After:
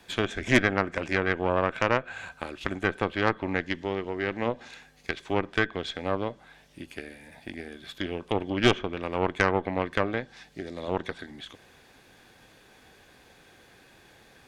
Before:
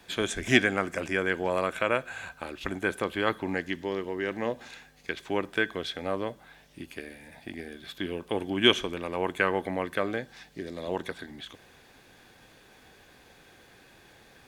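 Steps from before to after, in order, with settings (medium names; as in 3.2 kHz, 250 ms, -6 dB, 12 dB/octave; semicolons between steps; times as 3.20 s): low-pass that closes with the level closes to 2.1 kHz, closed at -23 dBFS; Chebyshev shaper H 6 -15 dB, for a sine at -5.5 dBFS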